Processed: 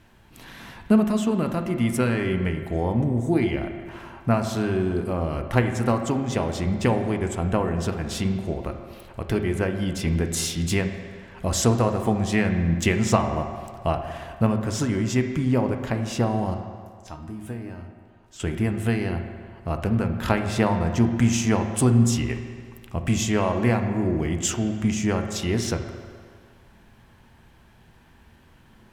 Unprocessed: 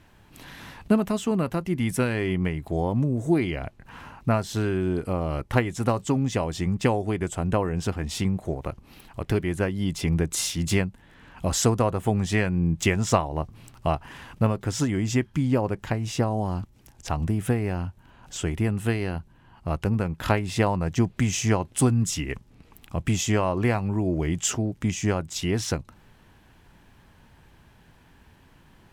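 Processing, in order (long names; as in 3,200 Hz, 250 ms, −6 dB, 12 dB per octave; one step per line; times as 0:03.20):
0:16.54–0:18.40: tuned comb filter 310 Hz, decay 0.3 s, harmonics all, mix 80%
on a send: convolution reverb RT60 2.0 s, pre-delay 4 ms, DRR 5 dB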